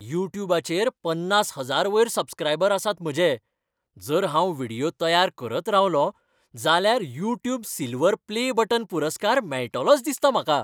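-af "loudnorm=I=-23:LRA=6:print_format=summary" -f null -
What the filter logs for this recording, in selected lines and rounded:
Input Integrated:    -23.3 LUFS
Input True Peak:      -4.5 dBTP
Input LRA:             1.6 LU
Input Threshold:     -33.5 LUFS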